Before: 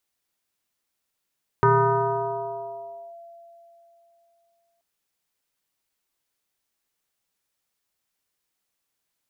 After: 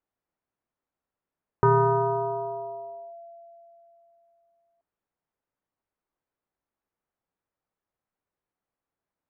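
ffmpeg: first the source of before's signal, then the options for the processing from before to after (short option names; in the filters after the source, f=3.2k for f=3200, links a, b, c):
-f lavfi -i "aevalsrc='0.224*pow(10,-3*t/3.33)*sin(2*PI*680*t+2.3*clip(1-t/1.52,0,1)*sin(2*PI*0.41*680*t))':d=3.18:s=44100"
-af "lowpass=1.2k"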